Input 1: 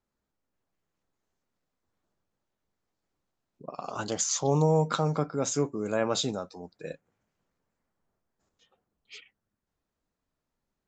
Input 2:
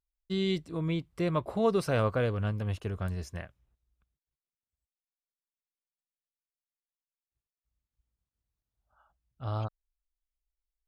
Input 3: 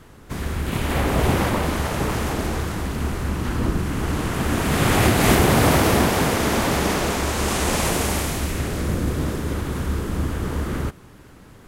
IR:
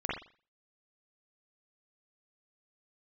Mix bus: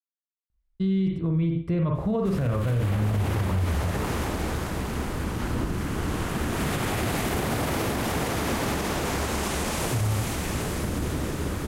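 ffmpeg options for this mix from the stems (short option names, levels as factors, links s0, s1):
-filter_complex "[1:a]bass=f=250:g=14,treble=f=4000:g=-10,adelay=500,volume=0.841,asplit=2[s0][s1];[s1]volume=0.531[s2];[2:a]adelay=1950,volume=0.596,asplit=2[s3][s4];[s4]volume=0.335[s5];[3:a]atrim=start_sample=2205[s6];[s2][s6]afir=irnorm=-1:irlink=0[s7];[s5]aecho=0:1:805|1610|2415|3220|4025|4830|5635:1|0.5|0.25|0.125|0.0625|0.0312|0.0156[s8];[s0][s3][s7][s8]amix=inputs=4:normalize=0,alimiter=limit=0.133:level=0:latency=1:release=81"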